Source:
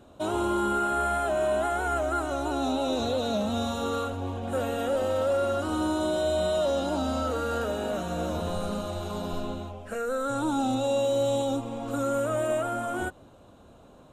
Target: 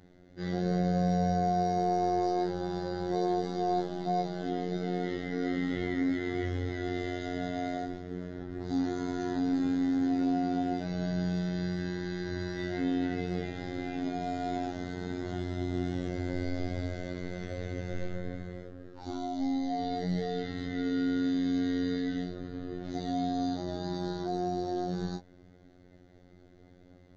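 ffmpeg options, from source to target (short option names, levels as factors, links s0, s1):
-af "afftfilt=real='hypot(re,im)*cos(PI*b)':imag='0':win_size=1024:overlap=0.75,asetrate=22932,aresample=44100"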